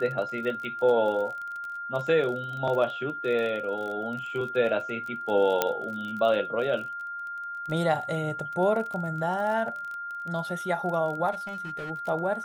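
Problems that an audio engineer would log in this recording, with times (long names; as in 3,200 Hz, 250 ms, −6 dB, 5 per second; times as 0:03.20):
surface crackle 30 per second −34 dBFS
whistle 1,400 Hz −33 dBFS
0:05.62: click −7 dBFS
0:11.31–0:11.91: clipping −31.5 dBFS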